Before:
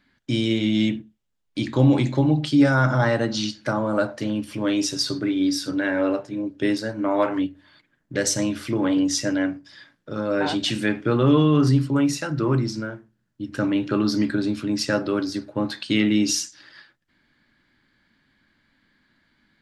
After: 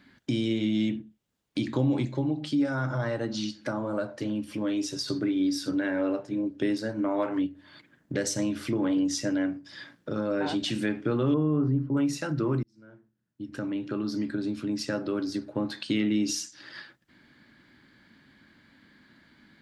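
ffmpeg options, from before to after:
ffmpeg -i in.wav -filter_complex "[0:a]asettb=1/sr,asplit=3[link_01][link_02][link_03];[link_01]atrim=end=2.054[link_04];[link_02]atrim=start=2.05:end=5.08,asetpts=PTS-STARTPTS,afade=type=in:duration=0.004:curve=qsin,afade=type=out:start_time=3.026:duration=0.004:curve=qsin,flanger=delay=1.8:depth=2.1:regen=-63:speed=1:shape=sinusoidal[link_05];[link_03]atrim=start=5.076[link_06];[link_04][link_05]acrossfade=duration=0.004:curve1=hsin:curve2=qsin[link_07];[link_07][link_06]acrossfade=duration=0.004:curve1=qsin:curve2=hsin,asettb=1/sr,asplit=3[link_08][link_09][link_10];[link_08]atrim=end=11.344[link_11];[link_09]atrim=start=11.34:end=11.97,asetpts=PTS-STARTPTS,afade=type=in:duration=0.004:curve=qsin,afade=type=out:start_time=0.626:duration=0.004:curve=qsin,lowpass=1100[link_12];[link_10]atrim=start=11.966[link_13];[link_11][link_12]acrossfade=duration=0.004:curve1=hsin:curve2=qsin[link_14];[link_14][link_13]acrossfade=duration=0.004:curve1=qsin:curve2=hsin,asplit=2[link_15][link_16];[link_15]atrim=end=12.63,asetpts=PTS-STARTPTS,afade=type=out:start_time=12.626:duration=0.004:curve=hsin[link_17];[link_16]atrim=start=12.63,asetpts=PTS-STARTPTS,afade=type=in:duration=3.52[link_18];[link_17][link_18]concat=n=2:v=0:a=1,highpass=50,acompressor=threshold=-44dB:ratio=2,equalizer=frequency=270:width=0.57:gain=4,volume=5dB" out.wav

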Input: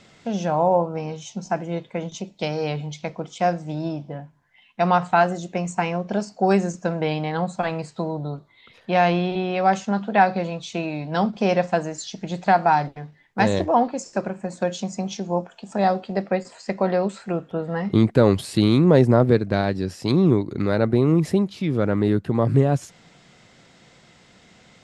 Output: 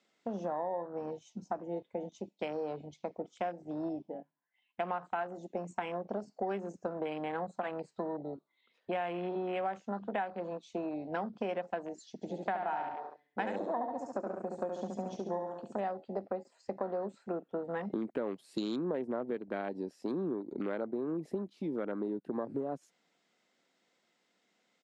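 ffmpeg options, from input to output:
ffmpeg -i in.wav -filter_complex "[0:a]asplit=3[link_01][link_02][link_03];[link_01]afade=type=out:start_time=12.21:duration=0.02[link_04];[link_02]aecho=1:1:70|140|210|280|350|420:0.596|0.298|0.149|0.0745|0.0372|0.0186,afade=type=in:start_time=12.21:duration=0.02,afade=type=out:start_time=15.81:duration=0.02[link_05];[link_03]afade=type=in:start_time=15.81:duration=0.02[link_06];[link_04][link_05][link_06]amix=inputs=3:normalize=0,highpass=frequency=230:width=0.5412,highpass=frequency=230:width=1.3066,afwtdn=0.0251,acompressor=threshold=-27dB:ratio=6,volume=-5.5dB" out.wav

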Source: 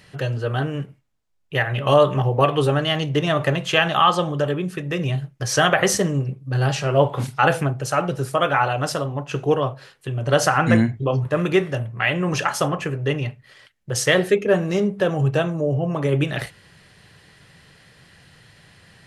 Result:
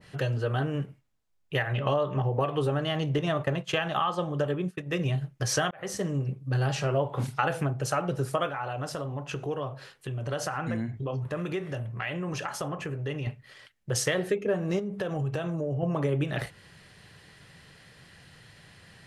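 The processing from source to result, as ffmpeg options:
ffmpeg -i in.wav -filter_complex "[0:a]asettb=1/sr,asplit=3[link_01][link_02][link_03];[link_01]atrim=end=1.734[link_04];[link_02]atrim=start=1.73:end=2.34,asetpts=PTS-STARTPTS,afade=type=in:duration=0.004:curve=qsin,afade=type=out:start_time=0.606:duration=0.004:curve=qsin,equalizer=frequency=10000:width=1.5:gain=-12.5[link_05];[link_03]atrim=start=2.336[link_06];[link_04][link_05]acrossfade=duration=0.004:curve1=hsin:curve2=qsin[link_07];[link_07][link_06]acrossfade=duration=0.004:curve1=qsin:curve2=hsin,asettb=1/sr,asplit=3[link_08][link_09][link_10];[link_08]atrim=end=3.184[link_11];[link_09]atrim=start=3.18:end=5.21,asetpts=PTS-STARTPTS,afade=type=in:duration=0.004:curve=qsin,afade=type=out:start_time=2.026:duration=0.004:curve=qsin,agate=range=-33dB:threshold=-23dB:ratio=3:release=100:detection=peak[link_12];[link_10]atrim=start=5.206[link_13];[link_11][link_12]acrossfade=duration=0.004:curve1=hsin:curve2=qsin[link_14];[link_14][link_13]acrossfade=duration=0.004:curve1=qsin:curve2=hsin,asettb=1/sr,asplit=3[link_15][link_16][link_17];[link_15]atrim=end=8.494[link_18];[link_16]atrim=start=8.49:end=13.27,asetpts=PTS-STARTPTS,afade=type=in:duration=0.004:curve=qsin,afade=type=out:start_time=4.776:duration=0.004:curve=qsin,acompressor=threshold=-30dB:ratio=2.5:attack=3.2:release=140:knee=1:detection=peak[link_19];[link_17]atrim=start=13.266[link_20];[link_18][link_19]acrossfade=duration=0.004:curve1=hsin:curve2=qsin[link_21];[link_21][link_20]acrossfade=duration=0.004:curve1=qsin:curve2=hsin,asettb=1/sr,asplit=3[link_22][link_23][link_24];[link_22]atrim=end=14.794[link_25];[link_23]atrim=start=14.79:end=15.83,asetpts=PTS-STARTPTS,afade=type=in:duration=0.004:curve=qsin,afade=type=out:start_time=1.036:duration=0.004:curve=qsin,acompressor=threshold=-24dB:ratio=10:attack=3.2:release=140:knee=1:detection=peak[link_26];[link_24]atrim=start=15.826[link_27];[link_25][link_26]acrossfade=duration=0.004:curve1=hsin:curve2=qsin[link_28];[link_28][link_27]acrossfade=duration=0.004:curve1=qsin:curve2=hsin,asplit=2[link_29][link_30];[link_29]atrim=end=5.71,asetpts=PTS-STARTPTS,afade=type=out:start_time=5.706:duration=0.004:curve=hsin[link_31];[link_30]atrim=start=5.71,asetpts=PTS-STARTPTS,afade=type=in:duration=0.69[link_32];[link_31][link_32]concat=n=2:v=0:a=1,acompressor=threshold=-21dB:ratio=5,adynamicequalizer=threshold=0.0126:dfrequency=1600:dqfactor=0.7:tfrequency=1600:tqfactor=0.7:attack=5:release=100:ratio=0.375:range=3:mode=cutabove:tftype=highshelf,volume=-2.5dB" out.wav

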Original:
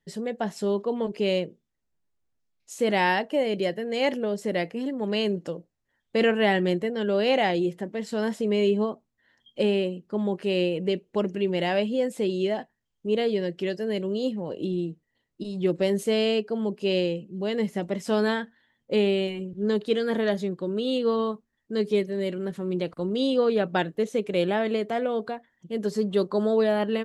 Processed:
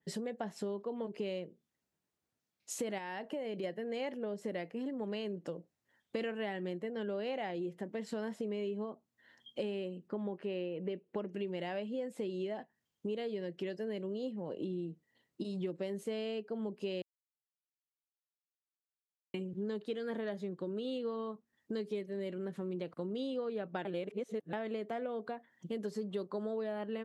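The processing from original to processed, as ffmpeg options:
ffmpeg -i in.wav -filter_complex "[0:a]asettb=1/sr,asplit=3[link_01][link_02][link_03];[link_01]atrim=end=2.984[link_04];[link_02]atrim=start=2.98:end=3.64,asetpts=PTS-STARTPTS,afade=type=in:duration=0.004:curve=qsin,afade=type=out:start_time=0.656:duration=0.004:curve=qsin,acompressor=threshold=-30dB:ratio=2.5:attack=3.2:release=140:knee=1:detection=peak[link_05];[link_03]atrim=start=3.636[link_06];[link_04][link_05]acrossfade=duration=0.004:curve1=hsin:curve2=qsin[link_07];[link_07][link_06]acrossfade=duration=0.004:curve1=qsin:curve2=hsin,asettb=1/sr,asplit=3[link_08][link_09][link_10];[link_08]atrim=end=10.084[link_11];[link_09]atrim=start=10.08:end=11.33,asetpts=PTS-STARTPTS,afade=type=in:duration=0.004:curve=qsin,afade=type=out:start_time=1.246:duration=0.004:curve=qsin,bass=frequency=250:gain=-2,treble=frequency=4000:gain=-14[link_12];[link_10]atrim=start=11.326[link_13];[link_11][link_12]acrossfade=duration=0.004:curve1=hsin:curve2=qsin[link_14];[link_14][link_13]acrossfade=duration=0.004:curve1=qsin:curve2=hsin,asplit=5[link_15][link_16][link_17][link_18][link_19];[link_15]atrim=end=17.02,asetpts=PTS-STARTPTS,afade=type=out:start_time=17.016:duration=0.004:curve=hsin[link_20];[link_16]atrim=start=17.02:end=19.34,asetpts=PTS-STARTPTS,volume=0[link_21];[link_17]atrim=start=19.34:end=23.852,asetpts=PTS-STARTPTS,afade=type=in:duration=0.004:curve=hsin[link_22];[link_18]atrim=start=23.848:end=24.532,asetpts=PTS-STARTPTS,areverse[link_23];[link_19]atrim=start=24.528[link_24];[link_20][link_21][link_22]concat=n=3:v=0:a=1[link_25];[link_25][link_23]acrossfade=duration=0.004:curve1=hsin:curve2=hsin[link_26];[link_26][link_24]acrossfade=duration=0.004:curve1=hsin:curve2=hsin,highpass=120,acompressor=threshold=-38dB:ratio=5,adynamicequalizer=threshold=0.00112:dfrequency=2800:dqfactor=0.7:tfrequency=2800:tqfactor=0.7:attack=5:release=100:ratio=0.375:range=3.5:mode=cutabove:tftype=highshelf,volume=1dB" out.wav

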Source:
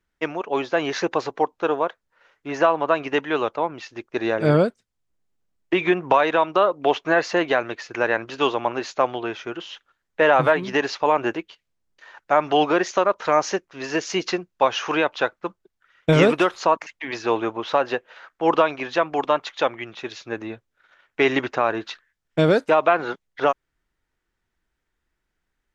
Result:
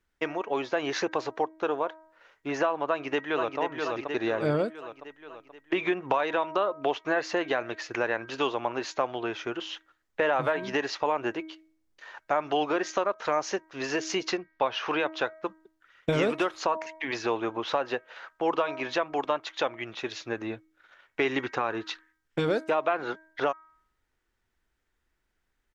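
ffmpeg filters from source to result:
ffmpeg -i in.wav -filter_complex "[0:a]asplit=2[link_01][link_02];[link_02]afade=type=in:start_time=2.86:duration=0.01,afade=type=out:start_time=3.59:duration=0.01,aecho=0:1:480|960|1440|1920|2400|2880:0.530884|0.265442|0.132721|0.0663606|0.0331803|0.0165901[link_03];[link_01][link_03]amix=inputs=2:normalize=0,asettb=1/sr,asplit=3[link_04][link_05][link_06];[link_04]atrim=end=14.374[link_07];[link_05]atrim=start=14.37:end=15,asetpts=PTS-STARTPTS,afade=type=in:duration=0.004:curve=qsin,afade=type=out:start_time=0.626:duration=0.004:curve=qsin,lowpass=frequency=4900:width=0.5412,lowpass=frequency=4900:width=1.3066[link_08];[link_06]atrim=start=14.996[link_09];[link_07][link_08]acrossfade=duration=0.004:curve1=hsin:curve2=qsin[link_10];[link_10][link_09]acrossfade=duration=0.004:curve1=qsin:curve2=hsin,asettb=1/sr,asplit=3[link_11][link_12][link_13];[link_11]atrim=end=21.244[link_14];[link_12]atrim=start=21.24:end=22.48,asetpts=PTS-STARTPTS,afade=type=in:duration=0.004:curve=qsin,afade=type=out:start_time=1.236:duration=0.004:curve=qsin,bandreject=frequency=630:width=5.7[link_15];[link_13]atrim=start=22.476[link_16];[link_14][link_15]acrossfade=duration=0.004:curve1=hsin:curve2=qsin[link_17];[link_17][link_16]acrossfade=duration=0.004:curve1=qsin:curve2=hsin,equalizer=frequency=170:width=5.5:gain=-7.5,bandreject=frequency=317.2:width_type=h:width=4,bandreject=frequency=634.4:width_type=h:width=4,bandreject=frequency=951.6:width_type=h:width=4,bandreject=frequency=1268.8:width_type=h:width=4,bandreject=frequency=1586:width_type=h:width=4,bandreject=frequency=1903.2:width_type=h:width=4,bandreject=frequency=2220.4:width_type=h:width=4,acompressor=threshold=-29dB:ratio=2" out.wav

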